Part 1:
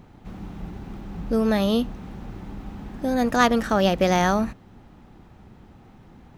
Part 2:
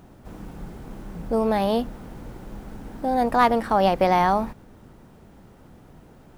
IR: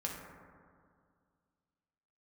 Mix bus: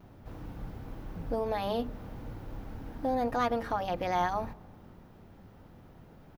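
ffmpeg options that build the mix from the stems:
-filter_complex "[0:a]equalizer=f=95:t=o:w=0.51:g=14,volume=-15.5dB[a];[1:a]bandreject=f=50:t=h:w=6,bandreject=f=100:t=h:w=6,bandreject=f=150:t=h:w=6,bandreject=f=200:t=h:w=6,bandreject=f=250:t=h:w=6,bandreject=f=300:t=h:w=6,bandreject=f=350:t=h:w=6,bandreject=f=400:t=h:w=6,bandreject=f=450:t=h:w=6,alimiter=limit=-17dB:level=0:latency=1:release=255,volume=-1,adelay=5.5,volume=-5.5dB,asplit=2[b][c];[c]volume=-21.5dB[d];[2:a]atrim=start_sample=2205[e];[d][e]afir=irnorm=-1:irlink=0[f];[a][b][f]amix=inputs=3:normalize=0,equalizer=f=8.3k:w=1.6:g=-10"

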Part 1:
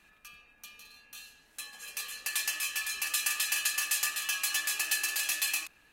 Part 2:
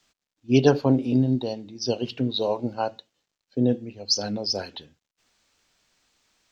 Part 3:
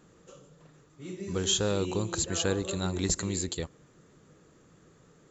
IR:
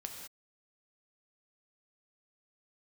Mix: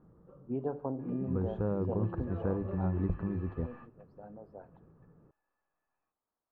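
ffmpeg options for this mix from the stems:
-filter_complex "[0:a]dynaudnorm=f=150:g=5:m=12.5dB,aeval=exprs='(tanh(22.4*val(0)+0.4)-tanh(0.4))/22.4':c=same,acompressor=threshold=-49dB:ratio=1.5,adelay=450,volume=-0.5dB[a];[1:a]acompressor=threshold=-20dB:ratio=6,volume=-5.5dB,afade=t=out:st=2.19:d=0.22:silence=0.354813,asplit=2[b][c];[c]volume=-12.5dB[d];[2:a]bass=f=250:g=15,treble=f=4k:g=4,bandreject=f=50:t=h:w=6,bandreject=f=100:t=h:w=6,bandreject=f=150:t=h:w=6,volume=-2dB,asplit=2[e][f];[f]apad=whole_len=280922[g];[a][g]sidechaingate=range=-31dB:threshold=-46dB:ratio=16:detection=peak[h];[3:a]atrim=start_sample=2205[i];[d][i]afir=irnorm=-1:irlink=0[j];[h][b][e][j]amix=inputs=4:normalize=0,lowpass=f=1.1k:w=0.5412,lowpass=f=1.1k:w=1.3066,lowshelf=f=450:g=-10"

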